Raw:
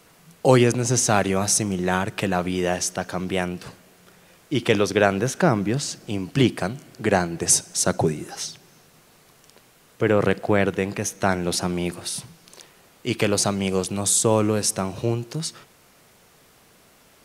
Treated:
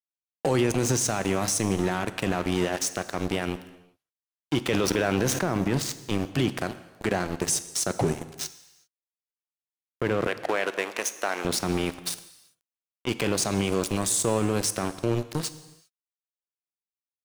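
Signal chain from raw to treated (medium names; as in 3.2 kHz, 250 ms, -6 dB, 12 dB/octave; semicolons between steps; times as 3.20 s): 12.14–13.09 s: treble shelf 4 kHz -9 dB; crossover distortion -29 dBFS; 10.27–11.45 s: high-pass 570 Hz 12 dB/octave; peak limiter -21 dBFS, peak gain reduction 17.5 dB; gated-style reverb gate 420 ms falling, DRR 12 dB; 4.68–5.39 s: level flattener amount 70%; trim +6.5 dB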